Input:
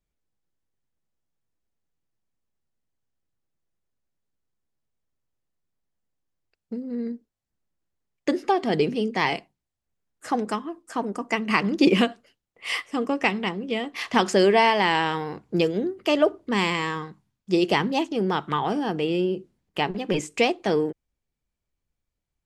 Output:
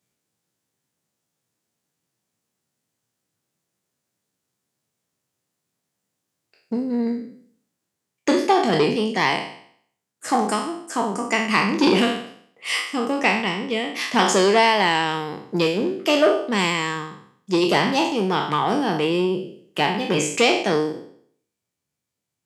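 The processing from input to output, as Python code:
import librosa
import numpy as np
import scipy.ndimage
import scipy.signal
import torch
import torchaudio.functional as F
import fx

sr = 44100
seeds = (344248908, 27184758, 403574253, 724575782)

p1 = fx.spec_trails(x, sr, decay_s=0.61)
p2 = scipy.signal.sosfilt(scipy.signal.butter(4, 110.0, 'highpass', fs=sr, output='sos'), p1)
p3 = fx.peak_eq(p2, sr, hz=8300.0, db=6.0, octaves=1.7)
p4 = fx.rider(p3, sr, range_db=10, speed_s=2.0)
p5 = p3 + (p4 * 10.0 ** (2.0 / 20.0))
p6 = fx.transformer_sat(p5, sr, knee_hz=960.0)
y = p6 * 10.0 ** (-5.5 / 20.0)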